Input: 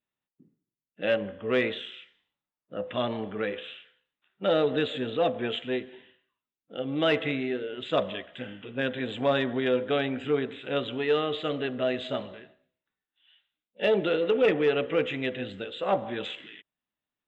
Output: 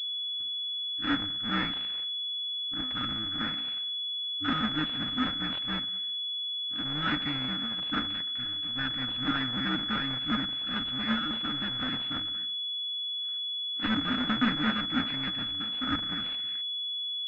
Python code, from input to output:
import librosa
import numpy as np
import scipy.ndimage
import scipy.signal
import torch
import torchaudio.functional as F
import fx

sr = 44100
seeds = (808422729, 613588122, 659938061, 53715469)

y = fx.cycle_switch(x, sr, every=2, mode='inverted')
y = fx.brickwall_bandstop(y, sr, low_hz=320.0, high_hz=1200.0)
y = fx.low_shelf(y, sr, hz=250.0, db=-10.0)
y = fx.pwm(y, sr, carrier_hz=3400.0)
y = y * librosa.db_to_amplitude(4.5)